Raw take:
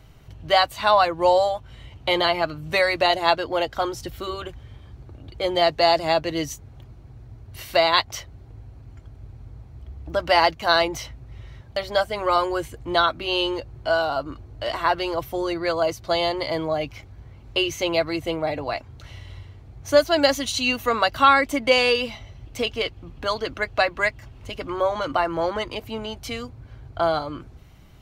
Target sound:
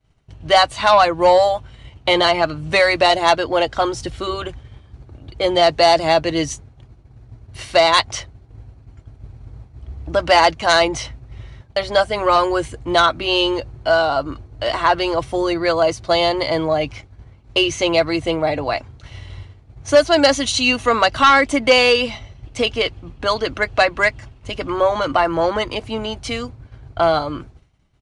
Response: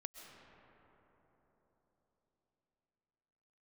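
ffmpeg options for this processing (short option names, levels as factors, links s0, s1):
-af "agate=range=0.0224:threshold=0.0158:ratio=3:detection=peak,aeval=exprs='0.75*sin(PI/2*1.78*val(0)/0.75)':c=same,aresample=22050,aresample=44100,volume=0.75"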